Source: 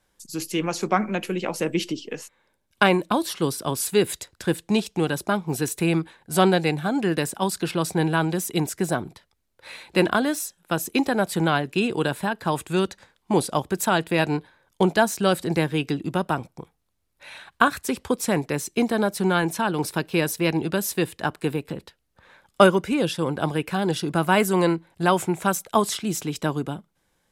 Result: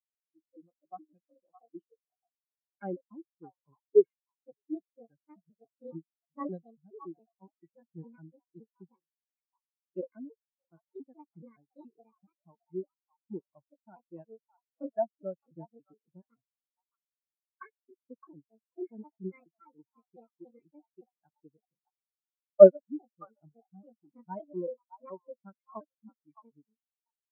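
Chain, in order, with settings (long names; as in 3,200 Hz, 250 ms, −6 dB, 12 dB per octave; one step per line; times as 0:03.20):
pitch shifter gated in a rhythm +7 semitones, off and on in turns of 141 ms
echo through a band-pass that steps 615 ms, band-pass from 1,000 Hz, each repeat 1.4 octaves, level −2 dB
every bin expanded away from the loudest bin 4 to 1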